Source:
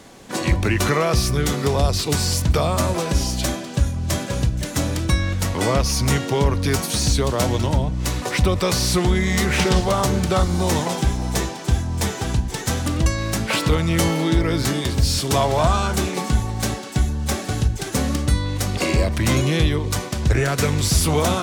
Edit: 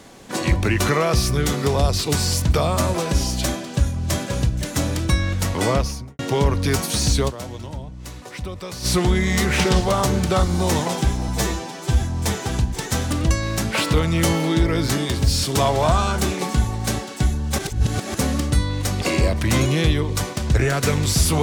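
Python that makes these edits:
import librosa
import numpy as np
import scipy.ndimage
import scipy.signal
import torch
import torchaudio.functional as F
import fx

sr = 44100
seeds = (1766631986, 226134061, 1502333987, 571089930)

y = fx.studio_fade_out(x, sr, start_s=5.69, length_s=0.5)
y = fx.edit(y, sr, fx.fade_down_up(start_s=7.28, length_s=1.58, db=-12.5, fade_s=0.17, curve='exp'),
    fx.stretch_span(start_s=11.28, length_s=0.49, factor=1.5),
    fx.reverse_span(start_s=17.34, length_s=0.56), tone=tone)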